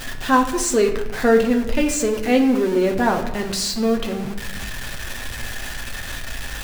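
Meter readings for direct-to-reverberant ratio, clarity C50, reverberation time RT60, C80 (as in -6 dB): 2.0 dB, 8.5 dB, 1.0 s, 11.0 dB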